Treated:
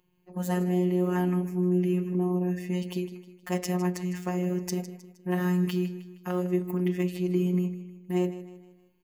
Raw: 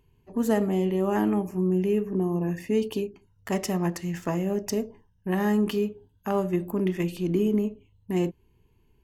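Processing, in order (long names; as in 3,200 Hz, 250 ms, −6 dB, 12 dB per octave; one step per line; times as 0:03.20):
high-pass filter 130 Hz 6 dB per octave
phases set to zero 180 Hz
repeating echo 156 ms, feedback 44%, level −14 dB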